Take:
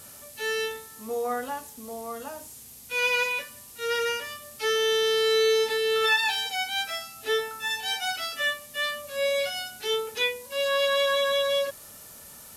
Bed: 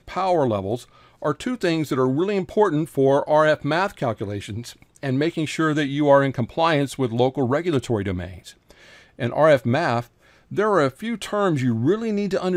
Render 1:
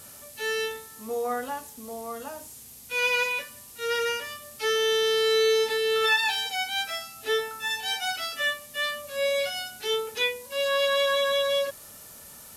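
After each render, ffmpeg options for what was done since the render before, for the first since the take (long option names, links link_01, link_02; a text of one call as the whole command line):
ffmpeg -i in.wav -af anull out.wav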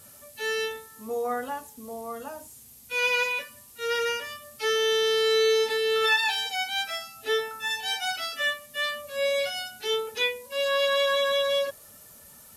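ffmpeg -i in.wav -af "afftdn=noise_reduction=6:noise_floor=-47" out.wav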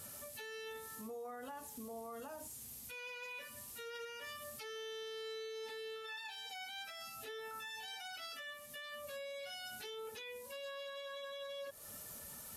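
ffmpeg -i in.wav -af "acompressor=threshold=-39dB:ratio=3,alimiter=level_in=15.5dB:limit=-24dB:level=0:latency=1:release=75,volume=-15.5dB" out.wav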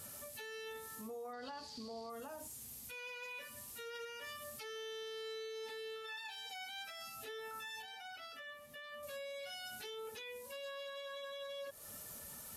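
ffmpeg -i in.wav -filter_complex "[0:a]asettb=1/sr,asplit=3[link_01][link_02][link_03];[link_01]atrim=end=1.334[link_04];[link_02]atrim=start=1.33:end=2.1,asetpts=PTS-STARTPTS,afade=type=in:duration=0.004:curve=qsin,afade=type=out:start_time=0.766:duration=0.004:curve=qsin,lowpass=frequency=4600:width_type=q:width=13[link_05];[link_03]atrim=start=2.096[link_06];[link_04][link_05]acrossfade=duration=0.004:curve1=hsin:curve2=qsin[link_07];[link_07][link_06]acrossfade=duration=0.004:curve1=qsin:curve2=hsin,asettb=1/sr,asplit=3[link_08][link_09][link_10];[link_08]atrim=end=7.824[link_11];[link_09]atrim=start=7.82:end=9.03,asetpts=PTS-STARTPTS,afade=type=in:duration=0.004:curve=qsin,afade=type=out:start_time=1.206:duration=0.004:curve=qsin,equalizer=frequency=9200:width=0.35:gain=-10[link_12];[link_10]atrim=start=9.026[link_13];[link_11][link_12]acrossfade=duration=0.004:curve1=hsin:curve2=qsin[link_14];[link_14][link_13]acrossfade=duration=0.004:curve1=qsin:curve2=hsin" out.wav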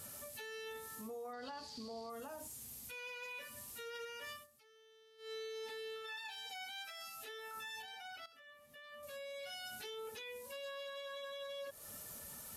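ffmpeg -i in.wav -filter_complex "[0:a]asettb=1/sr,asplit=3[link_01][link_02][link_03];[link_01]atrim=end=6.724[link_04];[link_02]atrim=start=6.72:end=7.57,asetpts=PTS-STARTPTS,afade=type=in:duration=0.004:curve=qsin,afade=type=out:start_time=0.846:duration=0.004:curve=qsin,lowshelf=frequency=360:gain=-11[link_05];[link_03]atrim=start=7.566[link_06];[link_04][link_05]acrossfade=duration=0.004:curve1=hsin:curve2=qsin[link_07];[link_07][link_06]acrossfade=duration=0.004:curve1=qsin:curve2=hsin,asplit=4[link_08][link_09][link_10][link_11];[link_08]atrim=end=4.47,asetpts=PTS-STARTPTS,afade=type=out:start_time=4.32:duration=0.15:silence=0.105925[link_12];[link_09]atrim=start=4.47:end=5.18,asetpts=PTS-STARTPTS,volume=-19.5dB[link_13];[link_10]atrim=start=5.18:end=8.26,asetpts=PTS-STARTPTS,afade=type=in:duration=0.15:silence=0.105925,afade=type=out:start_time=3.076:duration=0.004:curve=hsin:silence=0.223872[link_14];[link_11]atrim=start=8.26,asetpts=PTS-STARTPTS,afade=type=in:duration=1.27:silence=0.223872[link_15];[link_12][link_13][link_14][link_15]concat=n=4:v=0:a=1" out.wav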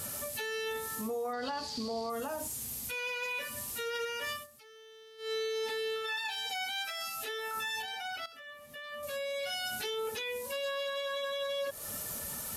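ffmpeg -i in.wav -af "volume=11dB" out.wav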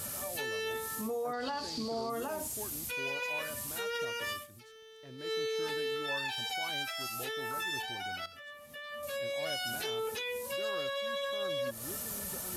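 ffmpeg -i in.wav -i bed.wav -filter_complex "[1:a]volume=-27.5dB[link_01];[0:a][link_01]amix=inputs=2:normalize=0" out.wav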